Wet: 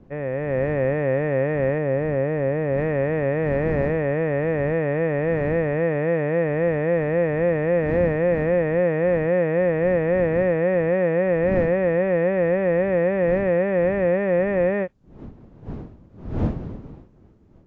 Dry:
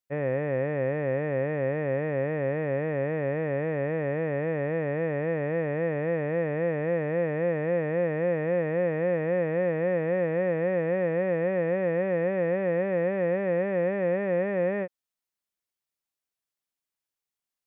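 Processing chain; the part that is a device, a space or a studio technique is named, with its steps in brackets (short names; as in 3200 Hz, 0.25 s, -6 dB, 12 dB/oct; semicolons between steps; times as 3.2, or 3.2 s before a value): 1.78–2.78 bell 2500 Hz -4 dB 2.6 oct; smartphone video outdoors (wind noise 230 Hz -42 dBFS; AGC gain up to 6 dB; AAC 48 kbps 16000 Hz)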